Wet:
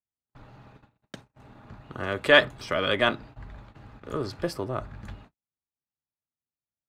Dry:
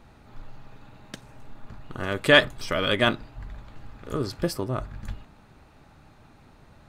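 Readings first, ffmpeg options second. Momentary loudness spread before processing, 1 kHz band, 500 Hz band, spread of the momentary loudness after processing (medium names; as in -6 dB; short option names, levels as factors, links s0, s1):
25 LU, 0.0 dB, -0.5 dB, 21 LU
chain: -filter_complex "[0:a]agate=range=0.00316:threshold=0.00708:ratio=16:detection=peak,highpass=56,aemphasis=mode=reproduction:type=cd,acrossover=split=330[s0][s1];[s0]asoftclip=type=tanh:threshold=0.0224[s2];[s2][s1]amix=inputs=2:normalize=0"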